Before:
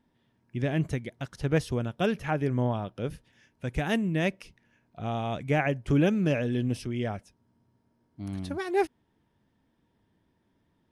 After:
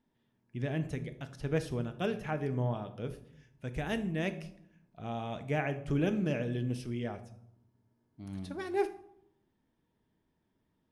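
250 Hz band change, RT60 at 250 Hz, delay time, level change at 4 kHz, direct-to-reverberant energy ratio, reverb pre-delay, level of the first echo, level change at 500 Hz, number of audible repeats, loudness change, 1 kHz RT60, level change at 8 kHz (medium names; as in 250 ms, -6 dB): -6.5 dB, 1.1 s, no echo, -6.5 dB, 8.5 dB, 3 ms, no echo, -5.5 dB, no echo, -6.0 dB, 0.75 s, -6.5 dB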